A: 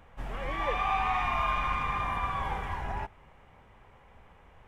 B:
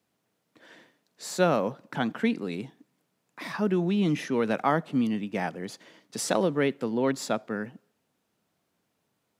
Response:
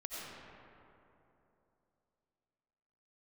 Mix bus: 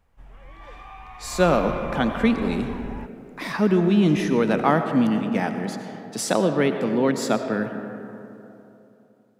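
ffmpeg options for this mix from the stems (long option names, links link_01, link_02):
-filter_complex "[0:a]volume=-5.5dB,afade=type=in:start_time=1.22:duration=0.25:silence=0.354813[link_01];[1:a]highpass=120,dynaudnorm=framelen=120:gausssize=17:maxgain=11dB,volume=-6.5dB,asplit=2[link_02][link_03];[link_03]volume=-4dB[link_04];[2:a]atrim=start_sample=2205[link_05];[link_04][link_05]afir=irnorm=-1:irlink=0[link_06];[link_01][link_02][link_06]amix=inputs=3:normalize=0,lowshelf=frequency=120:gain=8"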